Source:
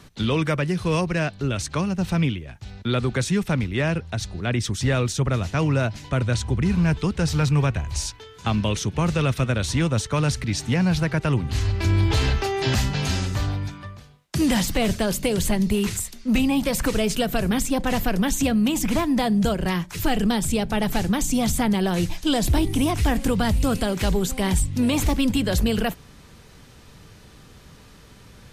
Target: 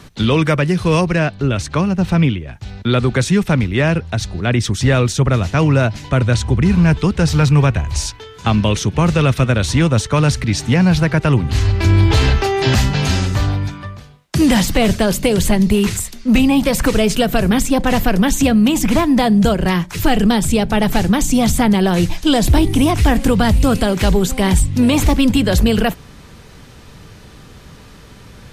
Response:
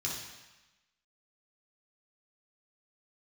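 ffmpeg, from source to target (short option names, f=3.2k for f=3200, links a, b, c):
-af "asetnsamples=n=441:p=0,asendcmd='1.16 highshelf g -9;2.53 highshelf g -3.5',highshelf=f=4.4k:g=-2,volume=8dB"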